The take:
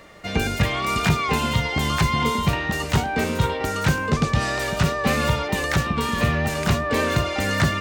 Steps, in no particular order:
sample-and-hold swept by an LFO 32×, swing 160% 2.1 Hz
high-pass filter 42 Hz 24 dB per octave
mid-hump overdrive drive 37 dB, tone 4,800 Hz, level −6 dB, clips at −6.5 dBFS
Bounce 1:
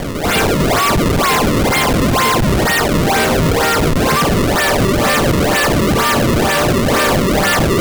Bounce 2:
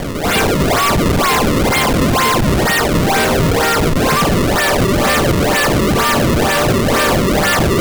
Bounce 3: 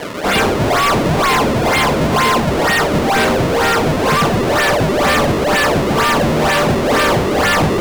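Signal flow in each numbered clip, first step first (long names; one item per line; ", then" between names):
mid-hump overdrive, then high-pass filter, then sample-and-hold swept by an LFO
high-pass filter, then mid-hump overdrive, then sample-and-hold swept by an LFO
high-pass filter, then sample-and-hold swept by an LFO, then mid-hump overdrive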